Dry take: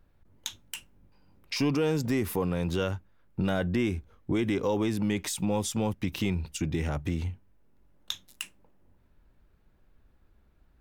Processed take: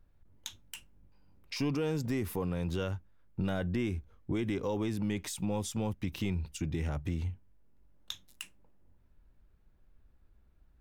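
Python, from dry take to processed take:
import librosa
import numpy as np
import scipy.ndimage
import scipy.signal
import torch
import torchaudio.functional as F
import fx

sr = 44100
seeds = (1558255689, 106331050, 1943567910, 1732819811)

y = fx.low_shelf(x, sr, hz=110.0, db=7.0)
y = y * librosa.db_to_amplitude(-6.5)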